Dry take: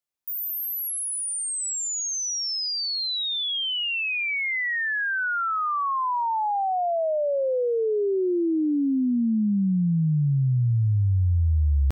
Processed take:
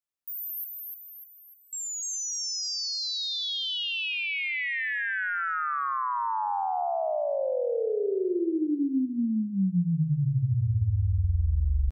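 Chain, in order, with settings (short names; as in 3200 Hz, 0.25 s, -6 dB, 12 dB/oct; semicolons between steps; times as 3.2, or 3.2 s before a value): 0.64–1.73 LPF 2500 Hz 24 dB/oct; frequency-shifting echo 0.299 s, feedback 48%, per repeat -34 Hz, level -4 dB; gain -5.5 dB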